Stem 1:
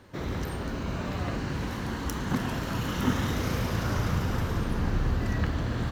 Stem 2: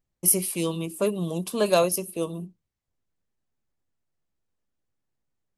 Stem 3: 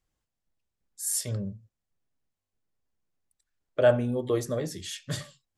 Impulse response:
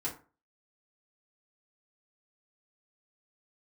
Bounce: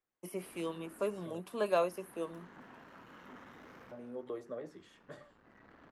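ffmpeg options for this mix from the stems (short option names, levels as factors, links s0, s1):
-filter_complex "[0:a]aeval=exprs='(tanh(22.4*val(0)+0.45)-tanh(0.45))/22.4':c=same,adelay=250,volume=0.178[s0];[1:a]crystalizer=i=0.5:c=0,volume=0.501[s1];[2:a]acrossover=split=250|1100|5900[s2][s3][s4][s5];[s2]acompressor=threshold=0.00891:ratio=4[s6];[s3]acompressor=threshold=0.0282:ratio=4[s7];[s4]acompressor=threshold=0.002:ratio=4[s8];[s5]acompressor=threshold=0.001:ratio=4[s9];[s6][s7][s8][s9]amix=inputs=4:normalize=0,volume=0.596,asplit=3[s10][s11][s12];[s10]atrim=end=1.4,asetpts=PTS-STARTPTS,afade=t=out:st=1.396:d=0.004:c=hsin[s13];[s11]atrim=start=1.4:end=3.91,asetpts=PTS-STARTPTS,volume=0[s14];[s12]atrim=start=3.91,asetpts=PTS-STARTPTS,afade=t=in:d=0.004:c=hsin[s15];[s13][s14][s15]concat=n=3:v=0:a=1,asplit=2[s16][s17];[s17]apad=whole_len=271845[s18];[s0][s18]sidechaincompress=threshold=0.00447:ratio=8:attack=20:release=1180[s19];[s19][s1][s16]amix=inputs=3:normalize=0,tiltshelf=f=1200:g=-5,acrossover=split=3800[s20][s21];[s21]acompressor=threshold=0.0224:ratio=4:attack=1:release=60[s22];[s20][s22]amix=inputs=2:normalize=0,acrossover=split=190 2100:gain=0.126 1 0.112[s23][s24][s25];[s23][s24][s25]amix=inputs=3:normalize=0"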